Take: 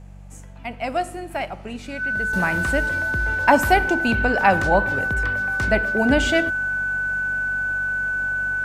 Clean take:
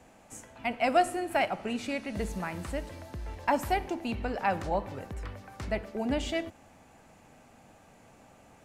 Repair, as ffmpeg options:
ffmpeg -i in.wav -af "bandreject=frequency=47.8:width_type=h:width=4,bandreject=frequency=95.6:width_type=h:width=4,bandreject=frequency=143.4:width_type=h:width=4,bandreject=frequency=191.2:width_type=h:width=4,bandreject=frequency=1500:width=30,asetnsamples=nb_out_samples=441:pad=0,asendcmd='2.33 volume volume -11.5dB',volume=0dB" out.wav

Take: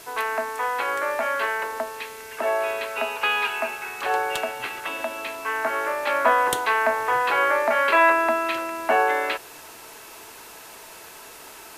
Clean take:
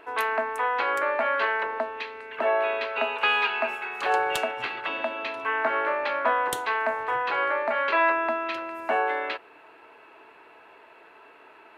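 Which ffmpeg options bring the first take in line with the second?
ffmpeg -i in.wav -af "afwtdn=0.0063,asetnsamples=nb_out_samples=441:pad=0,asendcmd='6.07 volume volume -5dB',volume=0dB" out.wav

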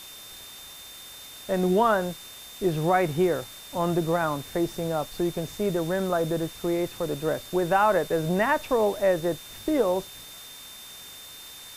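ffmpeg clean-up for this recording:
ffmpeg -i in.wav -af "bandreject=frequency=3600:width=30,afwtdn=0.0063" out.wav

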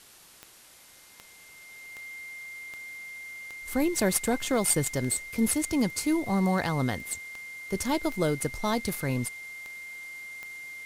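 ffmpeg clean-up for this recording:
ffmpeg -i in.wav -af "adeclick=threshold=4,bandreject=frequency=2100:width=30,afftdn=noise_reduction=20:noise_floor=-53" out.wav

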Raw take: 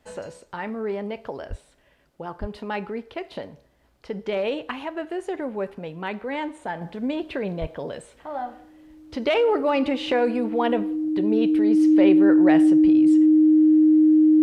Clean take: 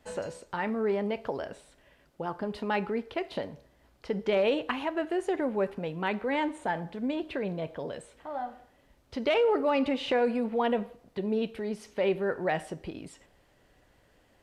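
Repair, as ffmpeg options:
ffmpeg -i in.wav -filter_complex "[0:a]bandreject=frequency=310:width=30,asplit=3[link_01][link_02][link_03];[link_01]afade=type=out:start_time=1.49:duration=0.02[link_04];[link_02]highpass=frequency=140:width=0.5412,highpass=frequency=140:width=1.3066,afade=type=in:start_time=1.49:duration=0.02,afade=type=out:start_time=1.61:duration=0.02[link_05];[link_03]afade=type=in:start_time=1.61:duration=0.02[link_06];[link_04][link_05][link_06]amix=inputs=3:normalize=0,asplit=3[link_07][link_08][link_09];[link_07]afade=type=out:start_time=2.4:duration=0.02[link_10];[link_08]highpass=frequency=140:width=0.5412,highpass=frequency=140:width=1.3066,afade=type=in:start_time=2.4:duration=0.02,afade=type=out:start_time=2.52:duration=0.02[link_11];[link_09]afade=type=in:start_time=2.52:duration=0.02[link_12];[link_10][link_11][link_12]amix=inputs=3:normalize=0,asplit=3[link_13][link_14][link_15];[link_13]afade=type=out:start_time=7.6:duration=0.02[link_16];[link_14]highpass=frequency=140:width=0.5412,highpass=frequency=140:width=1.3066,afade=type=in:start_time=7.6:duration=0.02,afade=type=out:start_time=7.72:duration=0.02[link_17];[link_15]afade=type=in:start_time=7.72:duration=0.02[link_18];[link_16][link_17][link_18]amix=inputs=3:normalize=0,asetnsamples=nb_out_samples=441:pad=0,asendcmd='6.81 volume volume -4.5dB',volume=0dB" out.wav

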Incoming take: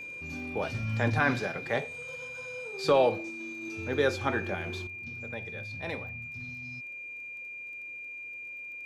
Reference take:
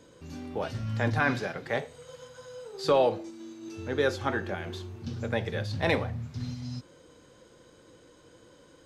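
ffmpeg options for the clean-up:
ffmpeg -i in.wav -af "adeclick=threshold=4,bandreject=frequency=2400:width=30,asetnsamples=nb_out_samples=441:pad=0,asendcmd='4.87 volume volume 11dB',volume=0dB" out.wav

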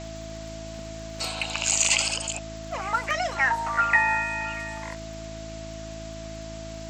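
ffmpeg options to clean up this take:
ffmpeg -i in.wav -af "adeclick=threshold=4,bandreject=frequency=54:width_type=h:width=4,bandreject=frequency=108:width_type=h:width=4,bandreject=frequency=162:width_type=h:width=4,bandreject=frequency=216:width_type=h:width=4,bandreject=frequency=270:width_type=h:width=4,bandreject=frequency=324:width_type=h:width=4,bandreject=frequency=660:width=30,afwtdn=0.0071" out.wav

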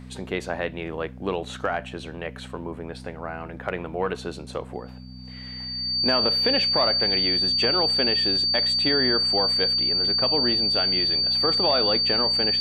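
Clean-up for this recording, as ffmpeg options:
ffmpeg -i in.wav -af "bandreject=frequency=63:width_type=h:width=4,bandreject=frequency=126:width_type=h:width=4,bandreject=frequency=189:width_type=h:width=4,bandreject=frequency=252:width_type=h:width=4,bandreject=frequency=4600:width=30" out.wav

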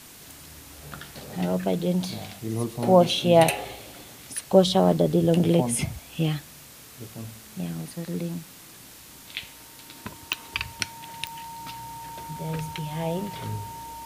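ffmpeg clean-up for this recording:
ffmpeg -i in.wav -af "adeclick=threshold=4,bandreject=frequency=920:width=30,afwtdn=0.005" out.wav

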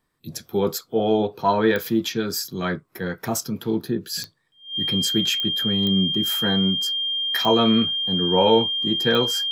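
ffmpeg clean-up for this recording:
ffmpeg -i in.wav -af "adeclick=threshold=4,bandreject=frequency=3200:width=30" out.wav

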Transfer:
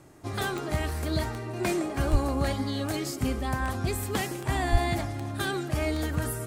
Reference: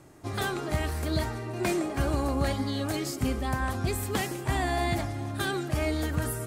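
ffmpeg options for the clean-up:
ffmpeg -i in.wav -filter_complex "[0:a]adeclick=threshold=4,asplit=3[link_01][link_02][link_03];[link_01]afade=type=out:start_time=2.11:duration=0.02[link_04];[link_02]highpass=frequency=140:width=0.5412,highpass=frequency=140:width=1.3066,afade=type=in:start_time=2.11:duration=0.02,afade=type=out:start_time=2.23:duration=0.02[link_05];[link_03]afade=type=in:start_time=2.23:duration=0.02[link_06];[link_04][link_05][link_06]amix=inputs=3:normalize=0,asplit=3[link_07][link_08][link_09];[link_07]afade=type=out:start_time=4.71:duration=0.02[link_10];[link_08]highpass=frequency=140:width=0.5412,highpass=frequency=140:width=1.3066,afade=type=in:start_time=4.71:duration=0.02,afade=type=out:start_time=4.83:duration=0.02[link_11];[link_09]afade=type=in:start_time=4.83:duration=0.02[link_12];[link_10][link_11][link_12]amix=inputs=3:normalize=0" out.wav

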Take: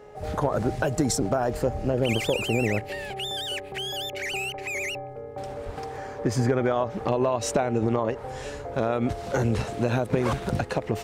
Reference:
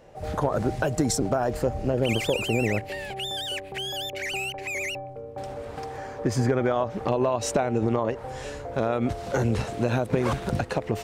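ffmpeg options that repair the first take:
ffmpeg -i in.wav -filter_complex "[0:a]bandreject=frequency=419.1:width_type=h:width=4,bandreject=frequency=838.2:width_type=h:width=4,bandreject=frequency=1257.3:width_type=h:width=4,bandreject=frequency=1676.4:width_type=h:width=4,bandreject=frequency=2095.5:width_type=h:width=4,asplit=3[link_01][link_02][link_03];[link_01]afade=type=out:start_time=5.65:duration=0.02[link_04];[link_02]highpass=frequency=140:width=0.5412,highpass=frequency=140:width=1.3066,afade=type=in:start_time=5.65:duration=0.02,afade=type=out:start_time=5.77:duration=0.02[link_05];[link_03]afade=type=in:start_time=5.77:duration=0.02[link_06];[link_04][link_05][link_06]amix=inputs=3:normalize=0" out.wav

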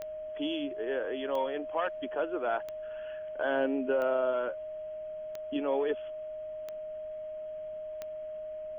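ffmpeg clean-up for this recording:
ffmpeg -i in.wav -af "adeclick=threshold=4,bandreject=frequency=620:width=30,agate=range=-21dB:threshold=-32dB" out.wav

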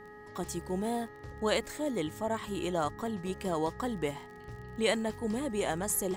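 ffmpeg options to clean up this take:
ffmpeg -i in.wav -af "adeclick=threshold=4,bandreject=frequency=419.1:width_type=h:width=4,bandreject=frequency=838.2:width_type=h:width=4,bandreject=frequency=1257.3:width_type=h:width=4,bandreject=frequency=1676.4:width_type=h:width=4,bandreject=frequency=1900:width=30" out.wav

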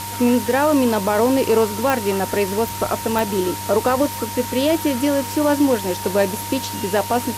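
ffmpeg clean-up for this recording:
ffmpeg -i in.wav -af "adeclick=threshold=4,bandreject=frequency=99.1:width_type=h:width=4,bandreject=frequency=198.2:width_type=h:width=4,bandreject=frequency=297.3:width_type=h:width=4,bandreject=frequency=396.4:width_type=h:width=4,bandreject=frequency=495.5:width_type=h:width=4,bandreject=frequency=930:width=30,afwtdn=0.028" out.wav

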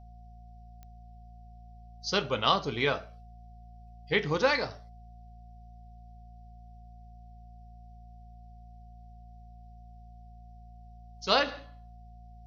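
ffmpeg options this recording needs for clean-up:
ffmpeg -i in.wav -af "adeclick=threshold=4,bandreject=frequency=56.6:width_type=h:width=4,bandreject=frequency=113.2:width_type=h:width=4,bandreject=frequency=169.8:width_type=h:width=4,bandreject=frequency=226.4:width_type=h:width=4,bandreject=frequency=720:width=30,agate=range=-21dB:threshold=-42dB" out.wav

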